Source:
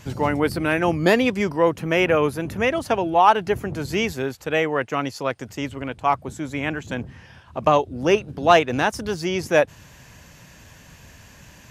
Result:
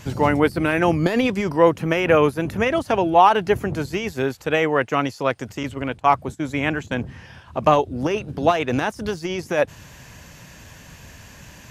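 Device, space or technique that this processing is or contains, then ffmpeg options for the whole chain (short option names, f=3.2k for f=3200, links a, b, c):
de-esser from a sidechain: -filter_complex "[0:a]asplit=2[a][b];[b]highpass=f=5.5k:w=0.5412,highpass=f=5.5k:w=1.3066,apad=whole_len=516327[c];[a][c]sidechaincompress=threshold=-47dB:ratio=10:attack=4:release=32,asettb=1/sr,asplit=3[d][e][f];[d]atrim=end=5.634[g];[e]atrim=start=5.63:end=7.06,asetpts=PTS-STARTPTS,afade=t=in:d=0.004:c=qsin,afade=t=out:st=1.426:d=0.004:c=qsin,agate=range=-14dB:threshold=-34dB:ratio=16:detection=peak[h];[f]atrim=start=7.056[i];[g][h]acrossfade=d=0.004:c1=hsin:c2=qsin[j];[j][i]acrossfade=d=0.004:c1=qsin:c2=hsin,volume=3.5dB"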